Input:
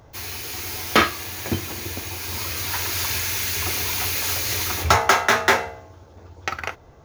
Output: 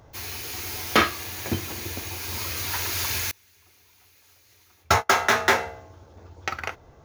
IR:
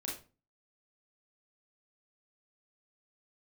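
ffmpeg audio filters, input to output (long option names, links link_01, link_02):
-filter_complex "[0:a]asettb=1/sr,asplit=3[link_01][link_02][link_03];[link_01]atrim=end=3.314[link_04];[link_02]atrim=start=3.31:end=5.15,asetpts=PTS-STARTPTS,afade=type=in:duration=0.004:curve=qsin,afade=type=out:start_time=1.836:duration=0.004:curve=qsin,agate=range=-31dB:threshold=-17dB:ratio=16:detection=peak[link_05];[link_03]atrim=start=5.146[link_06];[link_04][link_05]acrossfade=duration=0.004:curve1=hsin:curve2=qsin[link_07];[link_07][link_06]acrossfade=duration=0.004:curve1=qsin:curve2=hsin,volume=-2.5dB"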